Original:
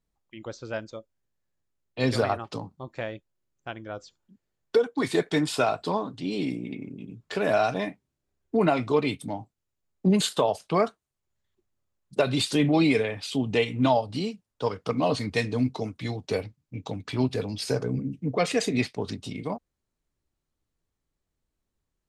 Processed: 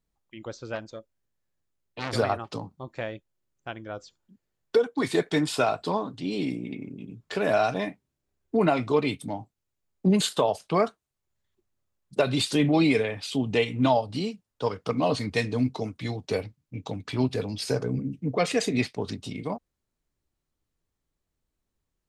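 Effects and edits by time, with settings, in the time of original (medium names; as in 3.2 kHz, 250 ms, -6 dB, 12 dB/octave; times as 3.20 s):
0.75–2.13 s: transformer saturation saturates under 2 kHz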